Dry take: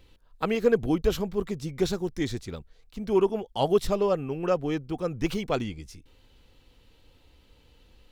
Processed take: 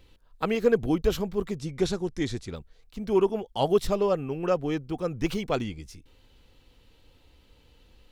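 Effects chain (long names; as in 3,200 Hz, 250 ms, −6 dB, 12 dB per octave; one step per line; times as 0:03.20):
0:01.57–0:02.55: low-pass filter 11,000 Hz 24 dB per octave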